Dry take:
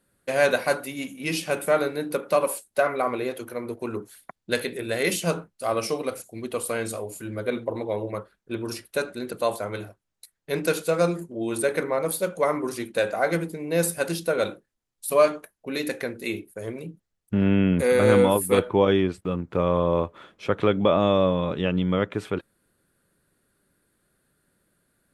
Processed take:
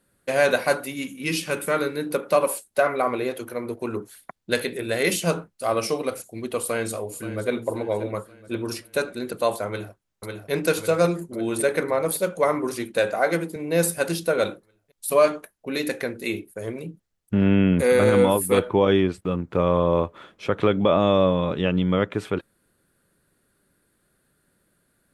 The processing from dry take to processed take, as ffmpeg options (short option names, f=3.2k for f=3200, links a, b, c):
-filter_complex "[0:a]asettb=1/sr,asplit=3[a][b][c];[a]atrim=end=0.944[d];[b]atrim=start=0.94:end=2.07,asetpts=PTS-STARTPTS,afade=t=in:d=0.004:c=qsin,afade=t=out:st=1.126:d=0.004:c=qsin,equalizer=f=690:w=3.8:g=-13[e];[c]atrim=start=2.066[f];[d][e]acrossfade=d=0.004:c1=hsin:c2=qsin[g];[g][f]acrossfade=d=0.004:c1=qsin:c2=hsin,asplit=2[h][i];[i]afade=t=in:st=6.6:d=0.01,afade=t=out:st=7.62:d=0.01,aecho=0:1:530|1060|1590|2120:0.211349|0.095107|0.0427982|0.0192592[j];[h][j]amix=inputs=2:normalize=0,asplit=2[k][l];[l]afade=t=in:st=9.67:d=0.01,afade=t=out:st=10.51:d=0.01,aecho=0:1:550|1100|1650|2200|2750|3300|3850|4400|4950|5500:0.668344|0.434424|0.282375|0.183544|0.119304|0.0775473|0.0504058|0.0327637|0.0212964|0.0138427[m];[k][m]amix=inputs=2:normalize=0,asettb=1/sr,asplit=3[n][o][p];[n]atrim=end=13.164[q];[o]atrim=start=13.16:end=13.56,asetpts=PTS-STARTPTS,afade=t=in:d=0.004:c=qsin,afade=t=out:st=0.396:d=0.004:c=qsin,highpass=180[r];[p]atrim=start=13.556[s];[q][r]acrossfade=d=0.004:c1=hsin:c2=qsin[t];[t][s]acrossfade=d=0.004:c1=qsin:c2=hsin,alimiter=level_in=8.5dB:limit=-1dB:release=50:level=0:latency=1,volume=-6.5dB"